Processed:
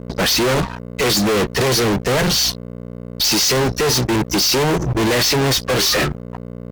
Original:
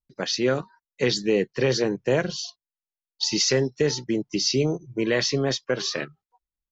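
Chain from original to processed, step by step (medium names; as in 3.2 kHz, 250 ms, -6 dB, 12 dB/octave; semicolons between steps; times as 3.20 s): hum 60 Hz, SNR 25 dB; fuzz box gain 46 dB, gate -49 dBFS; trim -2 dB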